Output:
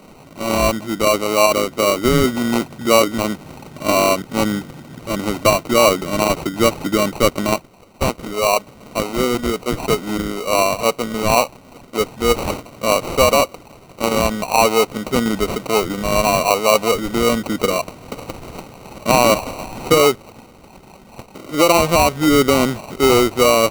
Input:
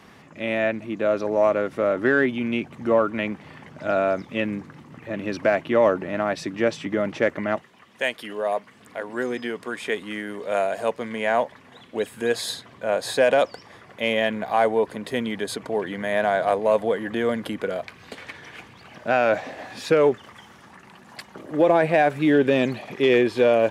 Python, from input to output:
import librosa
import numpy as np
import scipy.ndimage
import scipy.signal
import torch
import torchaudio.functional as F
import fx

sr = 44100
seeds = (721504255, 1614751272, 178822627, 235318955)

p1 = fx.rider(x, sr, range_db=10, speed_s=0.5)
p2 = x + (p1 * librosa.db_to_amplitude(-2.0))
p3 = fx.sample_hold(p2, sr, seeds[0], rate_hz=1700.0, jitter_pct=0)
y = p3 * librosa.db_to_amplitude(1.0)